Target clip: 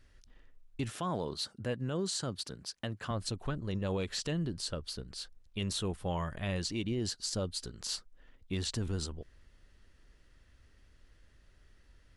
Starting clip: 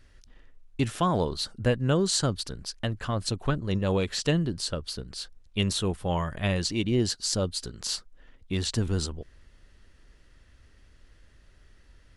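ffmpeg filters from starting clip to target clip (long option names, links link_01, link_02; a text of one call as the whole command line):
ffmpeg -i in.wav -filter_complex "[0:a]alimiter=limit=-20dB:level=0:latency=1:release=73,asettb=1/sr,asplit=3[link_01][link_02][link_03];[link_01]atrim=end=0.914[link_04];[link_02]atrim=start=0.91:end=3.11,asetpts=PTS-STARTPTS,afade=type=in:duration=0.004:curve=qsin,afade=type=out:start_time=2.196:duration=0.004:curve=qsin,highpass=110[link_05];[link_03]atrim=start=3.106[link_06];[link_04][link_05]acrossfade=duration=0.004:curve1=hsin:curve2=qsin[link_07];[link_07][link_06]acrossfade=duration=0.004:curve1=qsin:curve2=hsin,volume=-5.5dB" out.wav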